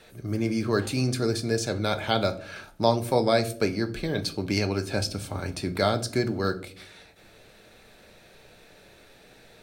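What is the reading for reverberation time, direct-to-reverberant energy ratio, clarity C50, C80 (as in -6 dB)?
0.55 s, 8.0 dB, 17.0 dB, 21.0 dB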